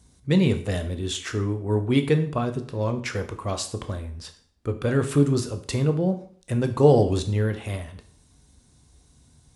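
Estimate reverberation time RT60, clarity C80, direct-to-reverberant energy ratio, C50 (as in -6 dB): 0.50 s, 16.0 dB, 7.5 dB, 12.0 dB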